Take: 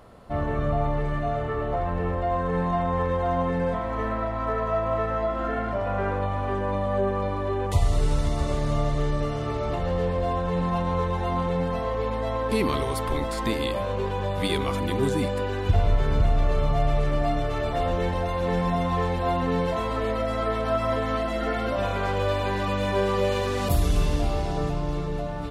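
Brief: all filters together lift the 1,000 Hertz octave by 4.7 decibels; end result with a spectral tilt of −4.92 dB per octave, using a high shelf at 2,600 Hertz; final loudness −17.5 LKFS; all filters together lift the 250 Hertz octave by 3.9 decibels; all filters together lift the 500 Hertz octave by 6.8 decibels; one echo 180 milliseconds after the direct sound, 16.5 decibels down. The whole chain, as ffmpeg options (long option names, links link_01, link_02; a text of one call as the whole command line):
ffmpeg -i in.wav -af "equalizer=frequency=250:width_type=o:gain=3.5,equalizer=frequency=500:width_type=o:gain=6.5,equalizer=frequency=1000:width_type=o:gain=4,highshelf=frequency=2600:gain=-3.5,aecho=1:1:180:0.15,volume=4dB" out.wav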